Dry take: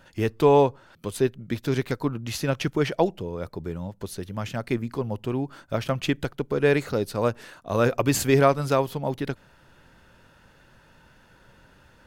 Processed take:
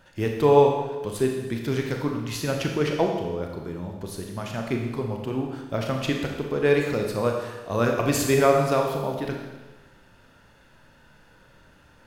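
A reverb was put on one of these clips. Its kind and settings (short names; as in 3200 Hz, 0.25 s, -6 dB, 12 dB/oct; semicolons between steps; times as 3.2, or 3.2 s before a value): Schroeder reverb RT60 1.2 s, combs from 27 ms, DRR 1.5 dB; gain -2 dB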